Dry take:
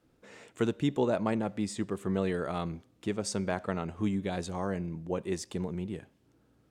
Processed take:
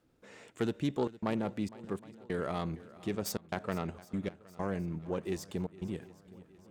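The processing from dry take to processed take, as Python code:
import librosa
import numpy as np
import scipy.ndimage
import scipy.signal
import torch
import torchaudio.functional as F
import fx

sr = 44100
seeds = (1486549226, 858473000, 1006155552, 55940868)

p1 = fx.self_delay(x, sr, depth_ms=0.13)
p2 = fx.step_gate(p1, sr, bpm=98, pattern='xxxxxxx.xxx.x..', floor_db=-60.0, edge_ms=4.5)
p3 = fx.level_steps(p2, sr, step_db=20)
p4 = p2 + (p3 * librosa.db_to_amplitude(2.5))
p5 = fx.echo_swing(p4, sr, ms=766, ratio=1.5, feedback_pct=45, wet_db=-19.0)
y = p5 * librosa.db_to_amplitude(-5.5)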